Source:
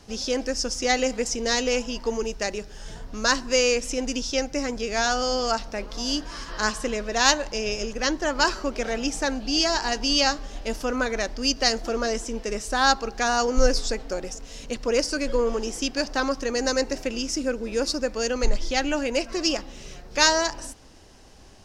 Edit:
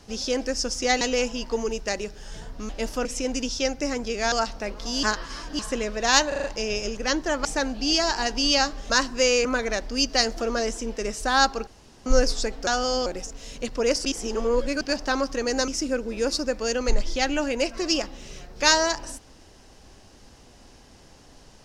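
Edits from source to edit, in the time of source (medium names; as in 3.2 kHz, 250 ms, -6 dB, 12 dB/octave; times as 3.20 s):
1.01–1.55 s: delete
3.23–3.78 s: swap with 10.56–10.92 s
5.05–5.44 s: move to 14.14 s
6.15–6.71 s: reverse
7.40 s: stutter 0.04 s, 5 plays
8.41–9.11 s: delete
13.14–13.53 s: room tone
15.13–15.89 s: reverse
16.76–17.23 s: delete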